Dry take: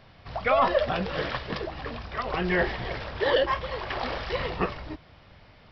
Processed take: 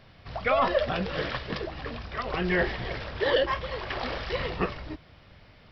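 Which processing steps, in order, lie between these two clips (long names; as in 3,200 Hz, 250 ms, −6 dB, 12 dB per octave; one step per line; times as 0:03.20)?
parametric band 870 Hz −3.5 dB 0.95 octaves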